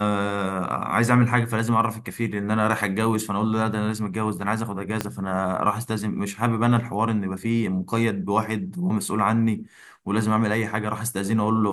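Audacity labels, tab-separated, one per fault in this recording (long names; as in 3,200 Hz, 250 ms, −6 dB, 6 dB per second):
5.010000	5.010000	click −9 dBFS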